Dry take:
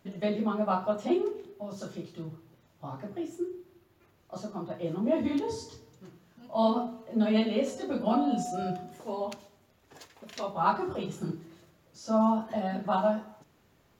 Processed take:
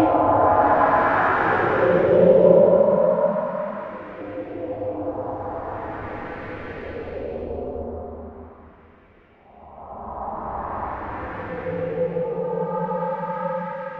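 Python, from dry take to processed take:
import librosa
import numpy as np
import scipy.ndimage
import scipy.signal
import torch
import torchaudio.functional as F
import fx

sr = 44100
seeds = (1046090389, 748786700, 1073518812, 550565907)

y = fx.cycle_switch(x, sr, every=2, mode='inverted')
y = fx.filter_lfo_lowpass(y, sr, shape='saw_up', hz=1.9, low_hz=350.0, high_hz=2700.0, q=3.8)
y = fx.paulstretch(y, sr, seeds[0], factor=4.7, window_s=0.5, from_s=0.63)
y = y * 10.0 ** (6.0 / 20.0)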